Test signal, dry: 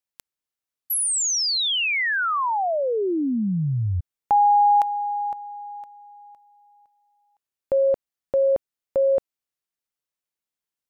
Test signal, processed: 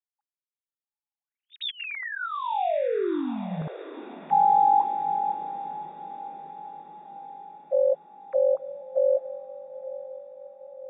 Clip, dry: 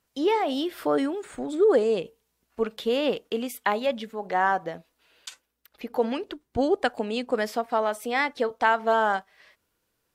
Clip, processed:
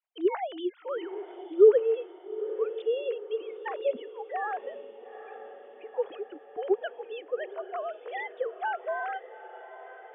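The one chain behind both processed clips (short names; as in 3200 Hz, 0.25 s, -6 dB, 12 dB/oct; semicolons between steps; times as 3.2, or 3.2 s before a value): sine-wave speech; diffused feedback echo 0.865 s, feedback 58%, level -14 dB; gain -4 dB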